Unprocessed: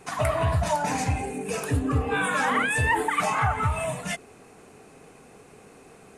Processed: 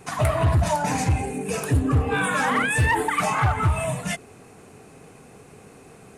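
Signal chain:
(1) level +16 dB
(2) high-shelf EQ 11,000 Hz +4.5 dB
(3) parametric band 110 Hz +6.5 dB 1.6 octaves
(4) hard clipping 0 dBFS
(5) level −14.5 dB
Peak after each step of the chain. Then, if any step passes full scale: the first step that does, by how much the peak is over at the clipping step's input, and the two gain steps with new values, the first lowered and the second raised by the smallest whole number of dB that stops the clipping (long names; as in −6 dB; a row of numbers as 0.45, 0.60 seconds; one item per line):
+3.0, +3.5, +7.0, 0.0, −14.5 dBFS
step 1, 7.0 dB
step 1 +9 dB, step 5 −7.5 dB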